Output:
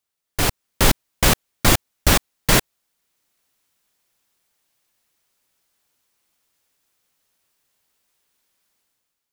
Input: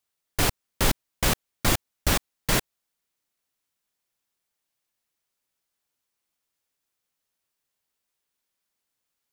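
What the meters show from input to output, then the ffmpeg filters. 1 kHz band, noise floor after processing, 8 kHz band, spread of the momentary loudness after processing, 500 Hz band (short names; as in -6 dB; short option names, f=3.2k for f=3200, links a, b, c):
+6.5 dB, -80 dBFS, +7.0 dB, 4 LU, +6.5 dB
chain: -af "dynaudnorm=f=110:g=9:m=11dB"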